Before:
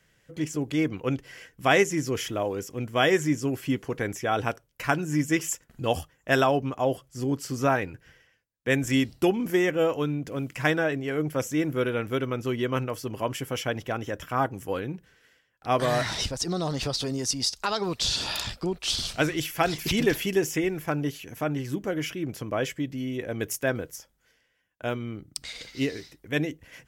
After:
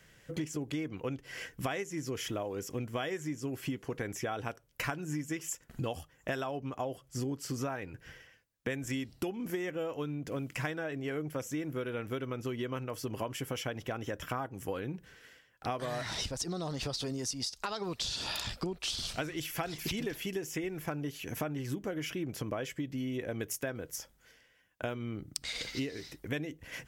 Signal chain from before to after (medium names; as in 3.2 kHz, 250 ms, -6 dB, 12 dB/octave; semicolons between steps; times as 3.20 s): compression 16:1, threshold -37 dBFS, peak gain reduction 21.5 dB; trim +4.5 dB